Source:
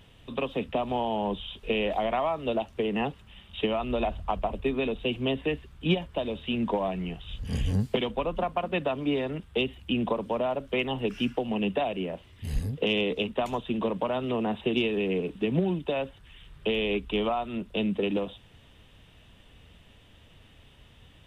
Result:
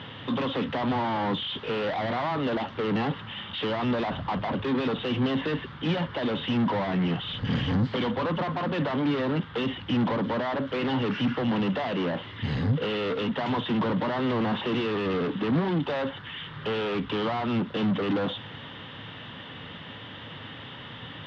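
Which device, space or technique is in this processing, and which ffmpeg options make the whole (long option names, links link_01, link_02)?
overdrive pedal into a guitar cabinet: -filter_complex "[0:a]asplit=2[link_01][link_02];[link_02]highpass=frequency=720:poles=1,volume=36dB,asoftclip=type=tanh:threshold=-12.5dB[link_03];[link_01][link_03]amix=inputs=2:normalize=0,lowpass=frequency=3700:poles=1,volume=-6dB,highpass=91,equalizer=frequency=110:width_type=q:width=4:gain=10,equalizer=frequency=160:width_type=q:width=4:gain=6,equalizer=frequency=260:width_type=q:width=4:gain=4,equalizer=frequency=400:width_type=q:width=4:gain=-4,equalizer=frequency=670:width_type=q:width=4:gain=-7,equalizer=frequency=2500:width_type=q:width=4:gain=-10,lowpass=frequency=3600:width=0.5412,lowpass=frequency=3600:width=1.3066,volume=-6.5dB"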